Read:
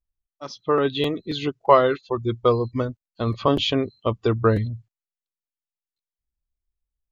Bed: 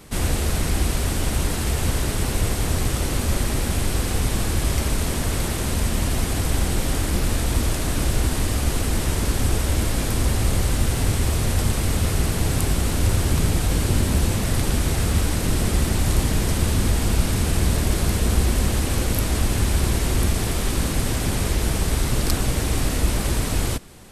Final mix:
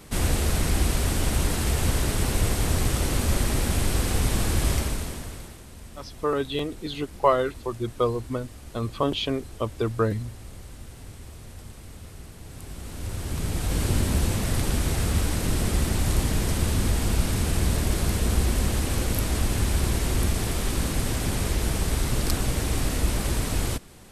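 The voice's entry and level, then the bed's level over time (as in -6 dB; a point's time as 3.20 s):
5.55 s, -5.0 dB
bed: 4.72 s -1.5 dB
5.66 s -21.5 dB
12.42 s -21.5 dB
13.83 s -3.5 dB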